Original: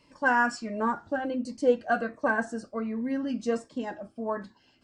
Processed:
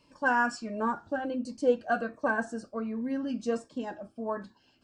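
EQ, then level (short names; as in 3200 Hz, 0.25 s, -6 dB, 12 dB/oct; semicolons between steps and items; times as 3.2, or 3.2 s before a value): notch 2000 Hz, Q 6; -2.0 dB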